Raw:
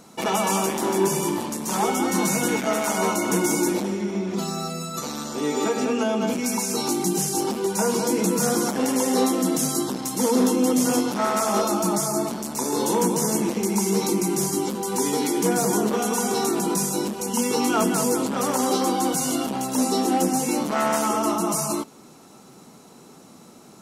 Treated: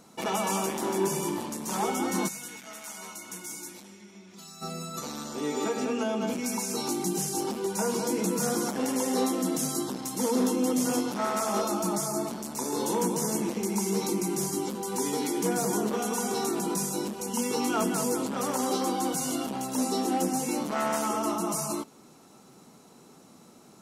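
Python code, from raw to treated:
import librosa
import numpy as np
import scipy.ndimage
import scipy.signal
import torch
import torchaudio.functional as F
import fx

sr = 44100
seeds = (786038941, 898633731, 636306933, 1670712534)

y = fx.tone_stack(x, sr, knobs='5-5-5', at=(2.27, 4.61), fade=0.02)
y = y * librosa.db_to_amplitude(-6.0)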